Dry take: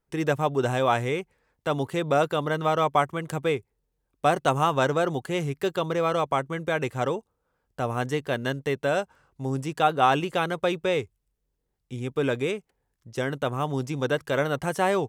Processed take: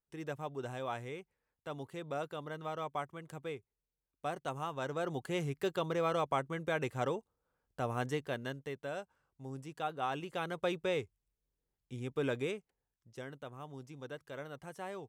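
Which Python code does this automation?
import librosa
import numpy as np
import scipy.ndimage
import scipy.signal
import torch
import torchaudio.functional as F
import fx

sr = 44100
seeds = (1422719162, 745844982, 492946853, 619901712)

y = fx.gain(x, sr, db=fx.line((4.79, -16.5), (5.24, -8.0), (8.1, -8.0), (8.79, -16.0), (10.1, -16.0), (10.67, -9.0), (12.43, -9.0), (13.48, -20.0)))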